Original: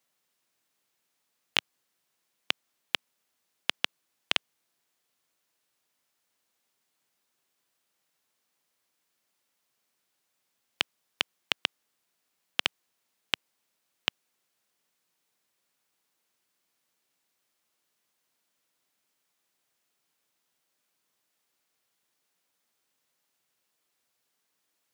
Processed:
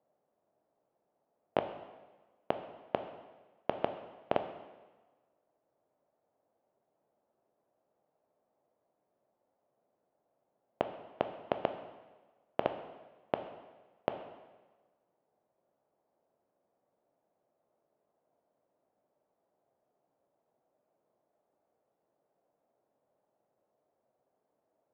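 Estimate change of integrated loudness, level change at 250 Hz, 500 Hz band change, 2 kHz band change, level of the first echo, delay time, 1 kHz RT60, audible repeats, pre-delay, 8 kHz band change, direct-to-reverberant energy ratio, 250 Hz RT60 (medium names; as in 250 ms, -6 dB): -6.0 dB, +7.0 dB, +13.0 dB, -14.5 dB, no echo, no echo, 1.3 s, no echo, 8 ms, under -30 dB, 7.0 dB, 1.2 s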